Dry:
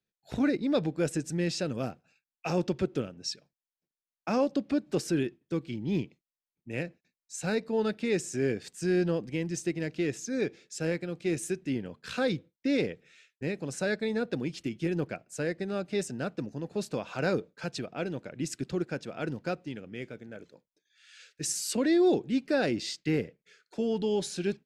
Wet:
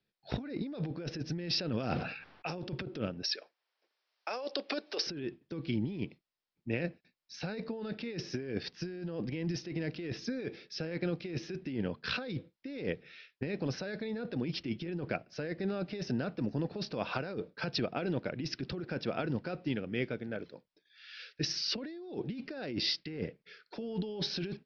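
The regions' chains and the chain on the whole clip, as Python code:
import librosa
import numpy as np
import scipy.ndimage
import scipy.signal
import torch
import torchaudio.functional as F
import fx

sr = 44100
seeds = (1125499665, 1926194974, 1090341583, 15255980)

y = fx.chain(x, sr, fx.env_lowpass(base_hz=1200.0, full_db=-28.0),
    fx.high_shelf(hz=2300.0, db=7.5),
    fx.sustainer(db_per_s=66.0), at=(1.7, 2.55))
y = fx.chain(y, sr, fx.highpass(hz=420.0, slope=24),
    fx.high_shelf(hz=3400.0, db=7.5),
    fx.band_squash(depth_pct=40), at=(3.23, 5.07))
y = scipy.signal.sosfilt(scipy.signal.butter(16, 5500.0, 'lowpass', fs=sr, output='sos'), y)
y = fx.over_compress(y, sr, threshold_db=-36.0, ratio=-1.0)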